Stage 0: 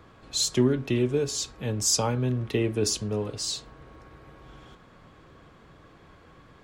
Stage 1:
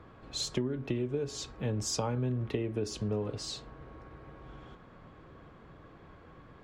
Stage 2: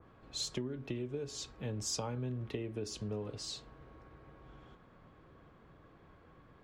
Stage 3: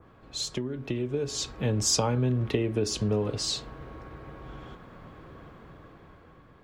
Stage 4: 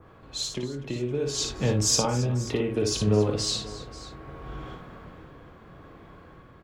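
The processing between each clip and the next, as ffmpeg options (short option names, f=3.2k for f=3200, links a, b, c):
-af "lowpass=f=1.8k:p=1,acompressor=threshold=-28dB:ratio=12"
-af "adynamicequalizer=threshold=0.00251:dfrequency=2400:dqfactor=0.7:tfrequency=2400:tqfactor=0.7:attack=5:release=100:ratio=0.375:range=2:mode=boostabove:tftype=highshelf,volume=-6.5dB"
-af "dynaudnorm=f=320:g=7:m=7.5dB,volume=5dB"
-filter_complex "[0:a]tremolo=f=0.64:d=0.42,asplit=2[a][b];[b]adelay=22,volume=-12dB[c];[a][c]amix=inputs=2:normalize=0,asplit=2[d][e];[e]aecho=0:1:57|271|537:0.562|0.158|0.141[f];[d][f]amix=inputs=2:normalize=0,volume=2.5dB"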